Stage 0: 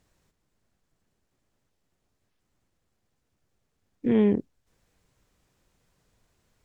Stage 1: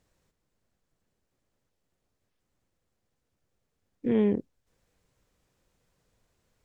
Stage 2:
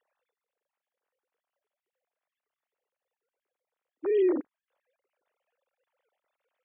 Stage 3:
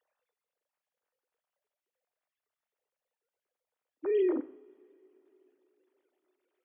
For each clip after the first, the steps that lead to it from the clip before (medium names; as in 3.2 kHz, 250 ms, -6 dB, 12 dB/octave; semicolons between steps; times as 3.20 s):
peaking EQ 510 Hz +4 dB 0.35 oct; trim -3.5 dB
formants replaced by sine waves
two-slope reverb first 0.6 s, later 4.1 s, from -21 dB, DRR 11.5 dB; trim -3 dB